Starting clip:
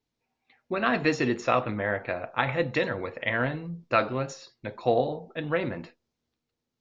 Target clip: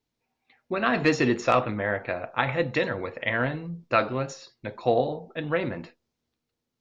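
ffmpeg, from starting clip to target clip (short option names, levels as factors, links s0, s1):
-filter_complex "[0:a]asettb=1/sr,asplit=3[s0][s1][s2];[s0]atrim=end=0.974[s3];[s1]atrim=start=0.97:end=1.66,asetpts=PTS-STARTPTS,afade=t=in:d=0.004:c=qsin,afade=t=out:st=0.686:d=0.004:c=qsin,aeval=exprs='0.447*(cos(1*acos(clip(val(0)/0.447,-1,1)))-cos(1*PI/2))+0.0316*(cos(5*acos(clip(val(0)/0.447,-1,1)))-cos(5*PI/2))':c=same[s4];[s2]atrim=start=1.656[s5];[s3][s4]acrossfade=d=0.004:c1=hsin:c2=qsin[s6];[s6][s5]acrossfade=d=0.004:c1=qsin:c2=hsin,volume=1.12"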